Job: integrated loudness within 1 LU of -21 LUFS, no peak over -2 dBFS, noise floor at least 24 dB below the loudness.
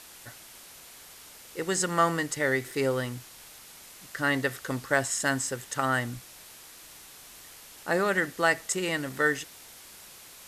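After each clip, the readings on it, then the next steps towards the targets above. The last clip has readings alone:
noise floor -49 dBFS; noise floor target -52 dBFS; loudness -28.0 LUFS; peak level -10.5 dBFS; loudness target -21.0 LUFS
-> noise reduction 6 dB, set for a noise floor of -49 dBFS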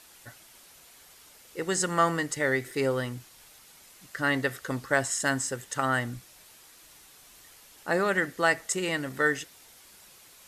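noise floor -54 dBFS; loudness -28.0 LUFS; peak level -10.5 dBFS; loudness target -21.0 LUFS
-> trim +7 dB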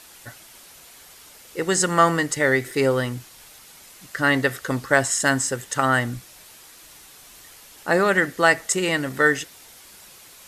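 loudness -21.0 LUFS; peak level -3.5 dBFS; noise floor -47 dBFS

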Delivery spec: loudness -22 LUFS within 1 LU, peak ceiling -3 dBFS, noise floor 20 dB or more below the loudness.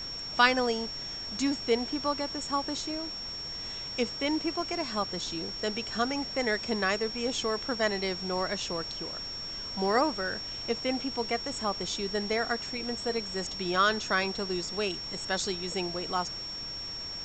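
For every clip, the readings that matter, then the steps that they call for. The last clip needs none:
steady tone 5.5 kHz; tone level -36 dBFS; noise floor -38 dBFS; noise floor target -51 dBFS; loudness -30.5 LUFS; peak level -8.5 dBFS; loudness target -22.0 LUFS
-> band-stop 5.5 kHz, Q 30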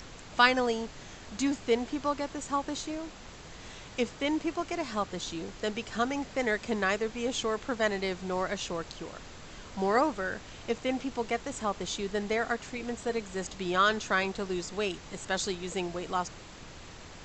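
steady tone not found; noise floor -48 dBFS; noise floor target -52 dBFS
-> noise print and reduce 6 dB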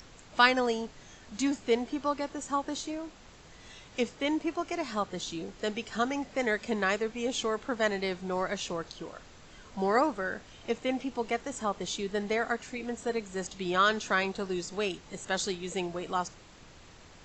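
noise floor -53 dBFS; loudness -31.5 LUFS; peak level -9.0 dBFS; loudness target -22.0 LUFS
-> trim +9.5 dB; peak limiter -3 dBFS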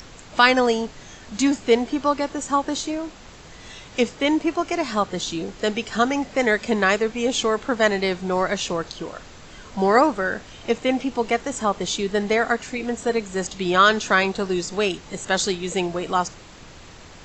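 loudness -22.0 LUFS; peak level -3.0 dBFS; noise floor -44 dBFS

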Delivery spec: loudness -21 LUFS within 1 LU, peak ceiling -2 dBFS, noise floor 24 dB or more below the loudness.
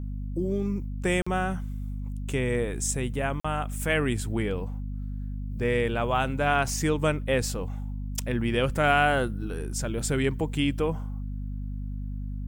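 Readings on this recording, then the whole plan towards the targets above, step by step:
dropouts 2; longest dropout 45 ms; hum 50 Hz; highest harmonic 250 Hz; hum level -30 dBFS; loudness -28.0 LUFS; peak level -9.5 dBFS; loudness target -21.0 LUFS
-> interpolate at 1.22/3.40 s, 45 ms; hum notches 50/100/150/200/250 Hz; trim +7 dB

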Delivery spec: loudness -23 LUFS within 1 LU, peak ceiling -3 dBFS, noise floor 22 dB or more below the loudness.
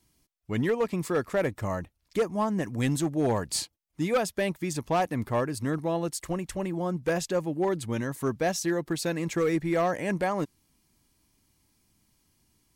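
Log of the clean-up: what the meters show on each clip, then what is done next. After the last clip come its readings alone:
clipped samples 1.1%; clipping level -19.5 dBFS; loudness -29.0 LUFS; peak level -19.5 dBFS; loudness target -23.0 LUFS
-> clip repair -19.5 dBFS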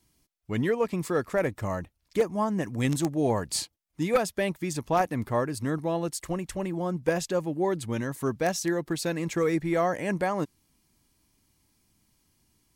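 clipped samples 0.0%; loudness -28.5 LUFS; peak level -10.5 dBFS; loudness target -23.0 LUFS
-> trim +5.5 dB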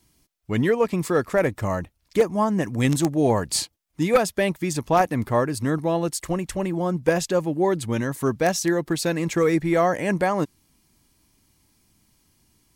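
loudness -23.0 LUFS; peak level -5.0 dBFS; noise floor -68 dBFS

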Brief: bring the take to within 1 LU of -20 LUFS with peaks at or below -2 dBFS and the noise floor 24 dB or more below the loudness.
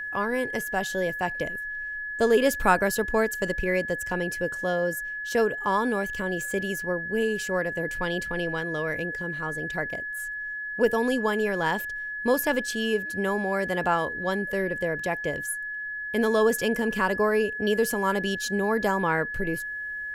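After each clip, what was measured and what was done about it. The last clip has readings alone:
steady tone 1.7 kHz; tone level -31 dBFS; loudness -26.5 LUFS; peak level -6.5 dBFS; loudness target -20.0 LUFS
-> band-stop 1.7 kHz, Q 30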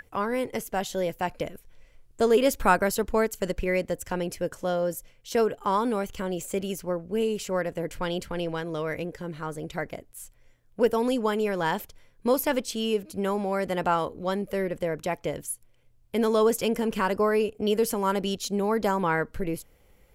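steady tone not found; loudness -27.5 LUFS; peak level -7.0 dBFS; loudness target -20.0 LUFS
-> trim +7.5 dB; peak limiter -2 dBFS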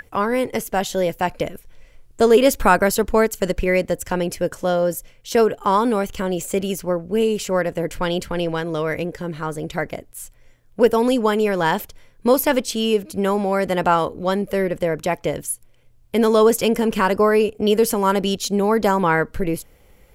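loudness -20.0 LUFS; peak level -2.0 dBFS; noise floor -52 dBFS

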